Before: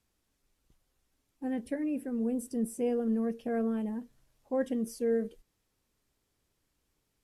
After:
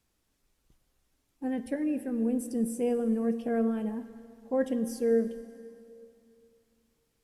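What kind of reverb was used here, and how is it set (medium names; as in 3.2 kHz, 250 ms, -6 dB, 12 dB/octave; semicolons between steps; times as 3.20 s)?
plate-style reverb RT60 2.8 s, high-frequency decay 0.9×, DRR 12 dB; trim +2 dB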